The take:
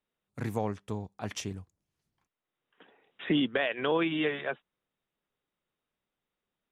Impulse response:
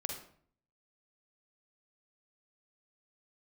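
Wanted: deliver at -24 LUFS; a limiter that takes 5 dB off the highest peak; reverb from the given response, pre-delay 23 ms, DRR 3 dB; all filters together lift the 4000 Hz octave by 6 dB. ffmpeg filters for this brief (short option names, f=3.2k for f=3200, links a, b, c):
-filter_complex "[0:a]equalizer=f=4k:t=o:g=8.5,alimiter=limit=-19dB:level=0:latency=1,asplit=2[a][b];[1:a]atrim=start_sample=2205,adelay=23[c];[b][c]afir=irnorm=-1:irlink=0,volume=-3.5dB[d];[a][d]amix=inputs=2:normalize=0,volume=6.5dB"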